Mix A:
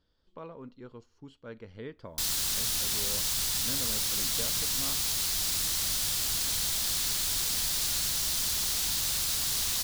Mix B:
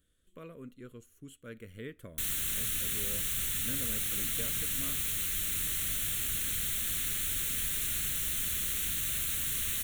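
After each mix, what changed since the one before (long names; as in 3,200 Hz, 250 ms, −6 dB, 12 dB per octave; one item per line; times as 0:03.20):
speech: remove high-frequency loss of the air 220 metres
master: add phaser with its sweep stopped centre 2,100 Hz, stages 4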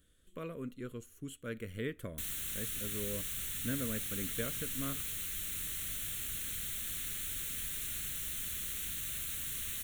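speech +5.0 dB
background −6.5 dB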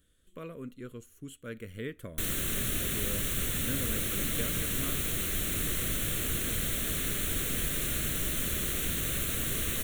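background: remove guitar amp tone stack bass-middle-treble 5-5-5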